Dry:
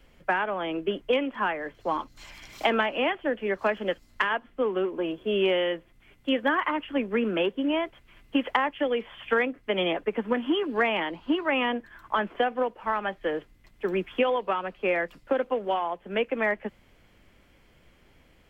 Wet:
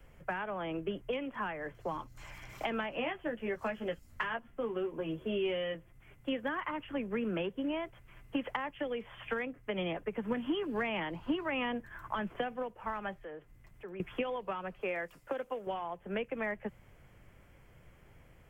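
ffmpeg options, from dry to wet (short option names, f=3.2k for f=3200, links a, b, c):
-filter_complex "[0:a]asettb=1/sr,asplit=3[a][b][c];[a]atrim=end=2.964[d];[b]atrim=start=2.96:end=5.75,asetpts=PTS-STARTPTS,afade=t=in:d=0.004:c=qsin,afade=t=out:st=2.786:d=0.004:c=qsin,asplit=2[e][f];[f]adelay=13,volume=-4dB[g];[e][g]amix=inputs=2:normalize=0,atrim=end_sample=123039[h];[c]atrim=start=5.746[i];[d][h]acrossfade=d=0.004:c1=hsin:c2=qsin[j];[j][i]acrossfade=d=0.004:c1=qsin:c2=hsin,asettb=1/sr,asplit=3[k][l][m];[k]atrim=end=13.184[n];[l]atrim=start=13.18:end=14,asetpts=PTS-STARTPTS,afade=t=in:d=0.004:c=qsin,afade=t=out:st=0.816:d=0.004:c=qsin,acompressor=threshold=-53dB:ratio=2:attack=3.2:release=140:knee=1:detection=peak[o];[m]atrim=start=13.996[p];[n][o]acrossfade=d=0.004:c1=hsin:c2=qsin[q];[q][p]acrossfade=d=0.004:c1=qsin:c2=hsin,asettb=1/sr,asplit=3[r][s][t];[r]atrim=end=14.814[u];[s]atrim=start=14.81:end=15.67,asetpts=PTS-STARTPTS,afade=t=in:d=0.004:c=qsin,afade=t=out:st=0.856:d=0.004:c=qsin,bass=f=250:g=-9,treble=f=4k:g=5[v];[t]atrim=start=15.666[w];[u][v]acrossfade=d=0.004:c1=hsin:c2=qsin[x];[x][w]acrossfade=d=0.004:c1=qsin:c2=hsin,asplit=3[y][z][aa];[y]atrim=end=10.232[ab];[z]atrim=start=10.228:end=12.562,asetpts=PTS-STARTPTS,volume=3dB[ac];[aa]atrim=start=12.558[ad];[ab][ac]acrossfade=d=0.004:c1=hsin:c2=hsin[ae];[ae][ad]acrossfade=d=0.004:c1=hsin:c2=hsin,acrossover=split=4200[af][ag];[ag]acompressor=threshold=-55dB:ratio=4:attack=1:release=60[ah];[af][ah]amix=inputs=2:normalize=0,equalizer=f=125:t=o:w=1:g=7,equalizer=f=250:t=o:w=1:g=-6,equalizer=f=4k:t=o:w=1:g=-12,acrossover=split=220|3000[ai][aj][ak];[aj]acompressor=threshold=-36dB:ratio=5[al];[ai][al][ak]amix=inputs=3:normalize=0"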